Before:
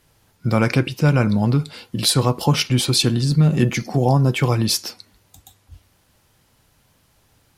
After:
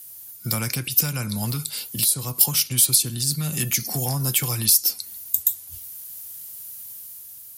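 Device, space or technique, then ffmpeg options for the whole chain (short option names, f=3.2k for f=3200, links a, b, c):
FM broadcast chain: -filter_complex "[0:a]highpass=f=60:w=0.5412,highpass=f=60:w=1.3066,dynaudnorm=f=120:g=11:m=3.5dB,acrossover=split=190|810[a][b][c];[a]acompressor=threshold=-17dB:ratio=4[d];[b]acompressor=threshold=-30dB:ratio=4[e];[c]acompressor=threshold=-28dB:ratio=4[f];[d][e][f]amix=inputs=3:normalize=0,aemphasis=mode=production:type=75fm,alimiter=limit=-11dB:level=0:latency=1:release=414,asoftclip=type=hard:threshold=-14dB,lowpass=f=15k:w=0.5412,lowpass=f=15k:w=1.3066,aemphasis=mode=production:type=75fm,volume=-5.5dB"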